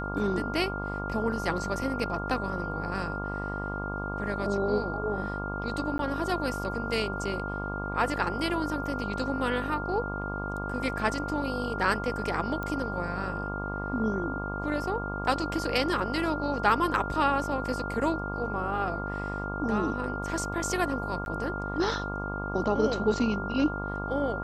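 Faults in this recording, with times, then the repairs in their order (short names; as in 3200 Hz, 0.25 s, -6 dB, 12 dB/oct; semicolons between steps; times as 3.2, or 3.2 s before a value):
buzz 50 Hz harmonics 24 -35 dBFS
tone 1400 Hz -35 dBFS
5.98–5.99 gap 12 ms
12.63 pop -21 dBFS
21.25–21.26 gap 11 ms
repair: de-click; de-hum 50 Hz, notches 24; notch 1400 Hz, Q 30; interpolate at 5.98, 12 ms; interpolate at 21.25, 11 ms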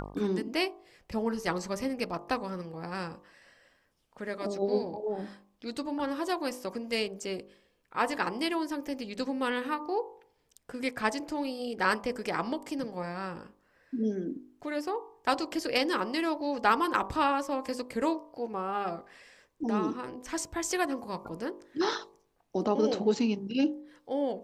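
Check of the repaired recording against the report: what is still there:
none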